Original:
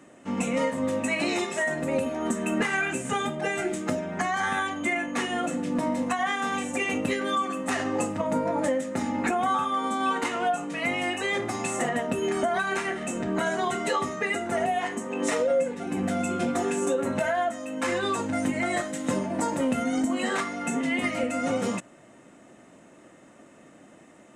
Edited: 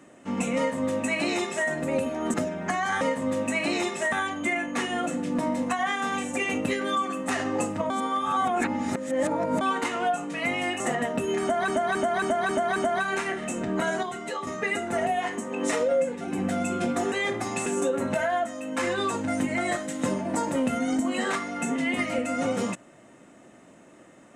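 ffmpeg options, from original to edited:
-filter_complex "[0:a]asplit=16[s0][s1][s2][s3][s4][s5][s6][s7][s8][s9][s10][s11][s12][s13][s14][s15];[s0]atrim=end=2.342[s16];[s1]atrim=start=3.848:end=4.522[s17];[s2]atrim=start=0.568:end=1.682[s18];[s3]atrim=start=4.518:end=8.302[s19];[s4]atrim=start=8.298:end=10.012,asetpts=PTS-STARTPTS,areverse[s20];[s5]atrim=start=10.008:end=11.202[s21];[s6]atrim=start=11.738:end=12.622[s22];[s7]atrim=start=12.348:end=12.622[s23];[s8]atrim=start=12.348:end=12.622[s24];[s9]atrim=start=12.348:end=12.622[s25];[s10]atrim=start=12.348:end=12.622[s26];[s11]atrim=start=12.348:end=13.622[s27];[s12]atrim=start=13.618:end=14.062,asetpts=PTS-STARTPTS,volume=0.473[s28];[s13]atrim=start=14.058:end=16.712[s29];[s14]atrim=start=11.198:end=11.742[s30];[s15]atrim=start=16.708[s31];[s16][s17]acrossfade=d=0.004:c1=hsin:c2=hsin[s32];[s32][s18]acrossfade=d=0.004:c1=hsin:c2=hsin[s33];[s33][s19]acrossfade=d=0.004:c1=hsin:c2=hsin[s34];[s34][s20]acrossfade=d=0.004:c1=hsin:c2=hsin[s35];[s35][s21]acrossfade=d=0.004:c1=hsin:c2=hsin[s36];[s36][s22]acrossfade=d=0.004:c1=hsin:c2=hsin[s37];[s37][s23]acrossfade=d=0.004:c1=hsin:c2=hsin[s38];[s38][s24]acrossfade=d=0.004:c1=hsin:c2=hsin[s39];[s39][s25]acrossfade=d=0.004:c1=hsin:c2=hsin[s40];[s40][s26]acrossfade=d=0.004:c1=hsin:c2=hsin[s41];[s41][s27]acrossfade=d=0.004:c1=hsin:c2=hsin[s42];[s42][s28]acrossfade=d=0.004:c1=hsin:c2=hsin[s43];[s43][s29]acrossfade=d=0.004:c1=hsin:c2=hsin[s44];[s44][s30]acrossfade=d=0.004:c1=hsin:c2=hsin[s45];[s45][s31]acrossfade=d=0.004:c1=hsin:c2=hsin"

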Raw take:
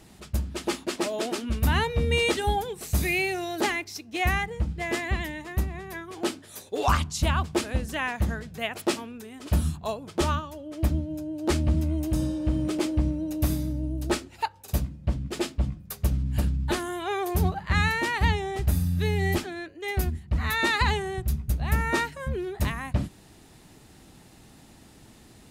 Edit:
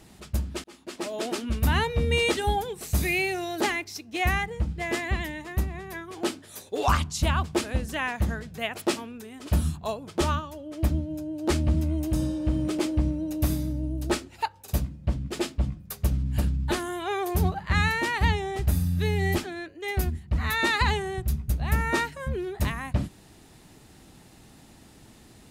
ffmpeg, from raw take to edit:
-filter_complex "[0:a]asplit=2[s0][s1];[s0]atrim=end=0.64,asetpts=PTS-STARTPTS,afade=t=out:st=0.636:d=0.004:c=hsin[s2];[s1]atrim=start=0.64,asetpts=PTS-STARTPTS,afade=t=in:d=0.69[s3];[s2][s3]concat=n=2:v=0:a=1"

